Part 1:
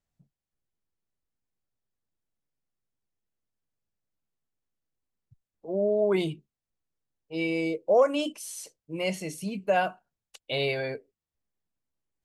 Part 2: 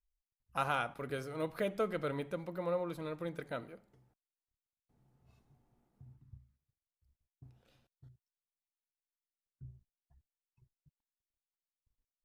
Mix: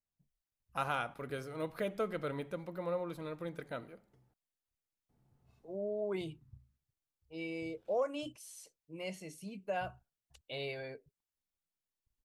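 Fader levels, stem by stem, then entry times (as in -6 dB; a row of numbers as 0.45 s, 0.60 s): -12.5 dB, -1.5 dB; 0.00 s, 0.20 s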